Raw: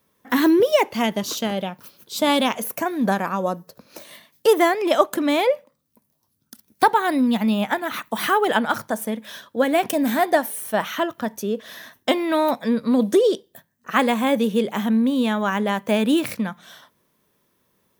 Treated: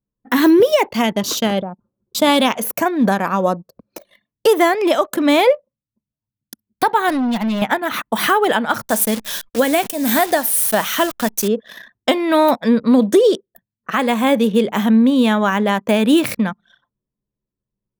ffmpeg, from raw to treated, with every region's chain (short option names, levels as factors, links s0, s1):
-filter_complex "[0:a]asettb=1/sr,asplit=3[s0][s1][s2];[s0]atrim=end=1.624[s3];[s1]atrim=start=1.62:end=2.15,asetpts=PTS-STARTPTS,afade=t=in:d=0.004:c=qsin,afade=t=out:st=0.526:d=0.004:c=qsin,lowpass=f=1300:w=0.5412,lowpass=f=1300:w=1.3066,acompressor=threshold=0.0282:ratio=2:attack=3.2:release=140:knee=1:detection=peak[s4];[s2]atrim=start=2.146[s5];[s3][s4]acrossfade=d=0.004:c1=hsin:c2=qsin[s6];[s6][s5]acrossfade=d=0.004:c1=qsin:c2=hsin,asettb=1/sr,asplit=3[s7][s8][s9];[s7]atrim=end=7.094[s10];[s8]atrim=start=7.09:end=7.62,asetpts=PTS-STARTPTS,afade=t=in:d=0.004:c=qsin,afade=t=out:st=0.526:d=0.004:c=qsin,lowshelf=f=220:g=-6.5,asoftclip=type=hard:threshold=0.075[s11];[s9]atrim=start=7.616[s12];[s10][s11]acrossfade=d=0.004:c1=hsin:c2=qsin[s13];[s13][s12]acrossfade=d=0.004:c1=qsin:c2=hsin,asettb=1/sr,asplit=3[s14][s15][s16];[s14]atrim=end=8.834[s17];[s15]atrim=start=8.83:end=11.48,asetpts=PTS-STARTPTS,afade=t=in:d=0.004:c=qsin,afade=t=out:st=2.646:d=0.004:c=qsin,acrusher=bits=7:dc=4:mix=0:aa=0.000001,highshelf=f=4000:g=10[s18];[s16]atrim=start=11.476[s19];[s17][s18]acrossfade=d=0.004:c1=hsin:c2=qsin[s20];[s20][s19]acrossfade=d=0.004:c1=qsin:c2=hsin,anlmdn=1.58,alimiter=limit=0.299:level=0:latency=1:release=287,volume=2.11"